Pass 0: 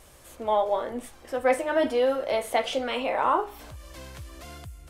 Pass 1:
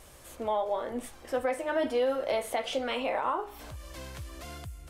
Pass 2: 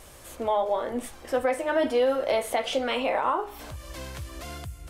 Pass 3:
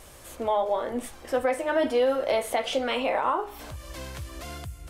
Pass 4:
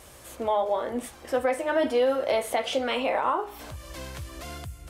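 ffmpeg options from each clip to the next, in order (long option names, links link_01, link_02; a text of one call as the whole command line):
ffmpeg -i in.wav -af "alimiter=limit=-20dB:level=0:latency=1:release=319" out.wav
ffmpeg -i in.wav -af "bandreject=frequency=53.3:width_type=h:width=4,bandreject=frequency=106.6:width_type=h:width=4,bandreject=frequency=159.9:width_type=h:width=4,bandreject=frequency=213.2:width_type=h:width=4,volume=4.5dB" out.wav
ffmpeg -i in.wav -af anull out.wav
ffmpeg -i in.wav -af "highpass=46" out.wav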